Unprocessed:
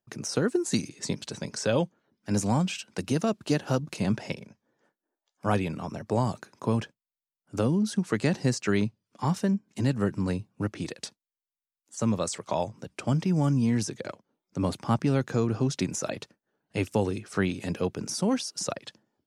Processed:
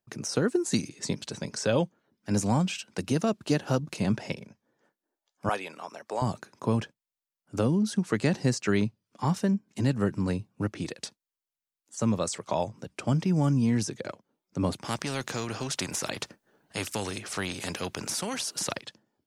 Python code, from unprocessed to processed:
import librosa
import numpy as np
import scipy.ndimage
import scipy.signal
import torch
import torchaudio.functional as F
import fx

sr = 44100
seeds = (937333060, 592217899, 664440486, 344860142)

y = fx.highpass(x, sr, hz=600.0, slope=12, at=(5.49, 6.22))
y = fx.spectral_comp(y, sr, ratio=2.0, at=(14.84, 18.81))